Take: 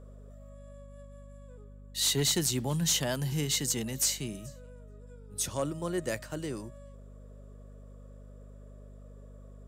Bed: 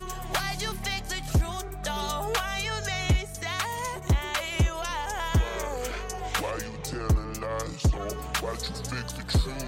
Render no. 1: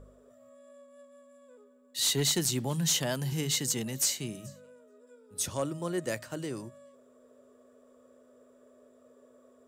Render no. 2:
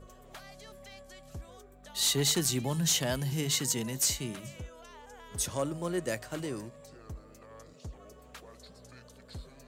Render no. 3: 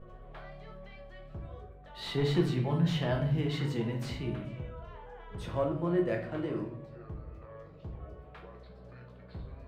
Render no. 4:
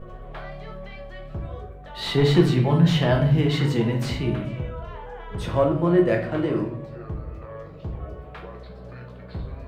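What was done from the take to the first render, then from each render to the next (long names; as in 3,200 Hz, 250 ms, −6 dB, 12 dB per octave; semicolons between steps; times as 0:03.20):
hum removal 50 Hz, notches 4
mix in bed −20.5 dB
high-frequency loss of the air 450 metres; rectangular room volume 87 cubic metres, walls mixed, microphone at 0.72 metres
level +10.5 dB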